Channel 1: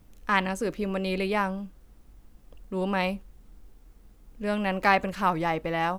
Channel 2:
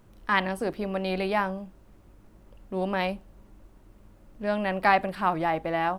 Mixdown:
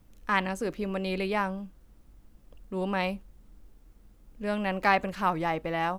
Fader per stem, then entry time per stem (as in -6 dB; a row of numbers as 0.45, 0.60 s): -3.5, -17.5 dB; 0.00, 0.00 s